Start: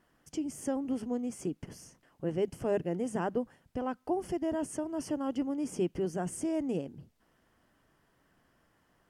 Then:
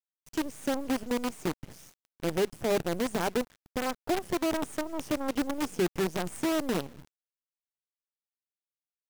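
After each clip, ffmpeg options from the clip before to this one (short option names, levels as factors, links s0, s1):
-af "acrusher=bits=6:dc=4:mix=0:aa=0.000001,volume=1.33"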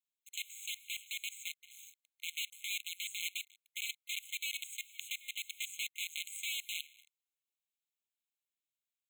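-af "afftfilt=real='re*eq(mod(floor(b*sr/1024/2100),2),1)':imag='im*eq(mod(floor(b*sr/1024/2100),2),1)':win_size=1024:overlap=0.75,volume=1.41"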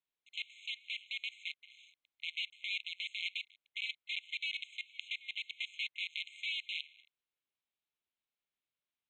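-af "lowpass=f=3900:w=0.5412,lowpass=f=3900:w=1.3066,volume=1.33"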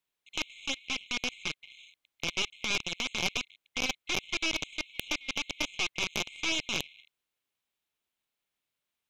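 -af "aeval=exprs='0.0944*(cos(1*acos(clip(val(0)/0.0944,-1,1)))-cos(1*PI/2))+0.00422*(cos(5*acos(clip(val(0)/0.0944,-1,1)))-cos(5*PI/2))+0.0422*(cos(6*acos(clip(val(0)/0.0944,-1,1)))-cos(6*PI/2))+0.0168*(cos(8*acos(clip(val(0)/0.0944,-1,1)))-cos(8*PI/2))':c=same,volume=1.78"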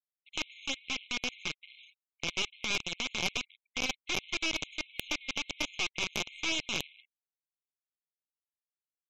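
-af "afftfilt=real='re*gte(hypot(re,im),0.00251)':imag='im*gte(hypot(re,im),0.00251)':win_size=1024:overlap=0.75,volume=0.841"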